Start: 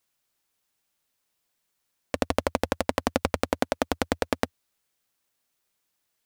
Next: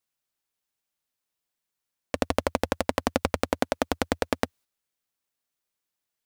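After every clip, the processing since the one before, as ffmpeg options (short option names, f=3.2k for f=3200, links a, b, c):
-af "agate=range=-8dB:threshold=-53dB:ratio=16:detection=peak"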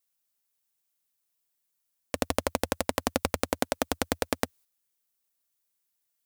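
-af "highshelf=f=6.4k:g=12,volume=-3dB"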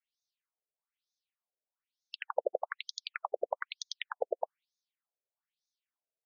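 -af "afftfilt=real='re*between(b*sr/1024,490*pow(4900/490,0.5+0.5*sin(2*PI*1.1*pts/sr))/1.41,490*pow(4900/490,0.5+0.5*sin(2*PI*1.1*pts/sr))*1.41)':imag='im*between(b*sr/1024,490*pow(4900/490,0.5+0.5*sin(2*PI*1.1*pts/sr))/1.41,490*pow(4900/490,0.5+0.5*sin(2*PI*1.1*pts/sr))*1.41)':win_size=1024:overlap=0.75"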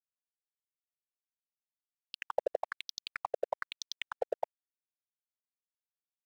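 -af "aeval=exprs='sgn(val(0))*max(abs(val(0))-0.00596,0)':c=same"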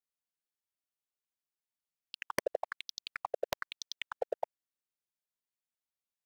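-af "aeval=exprs='(mod(6.68*val(0)+1,2)-1)/6.68':c=same,volume=-1dB"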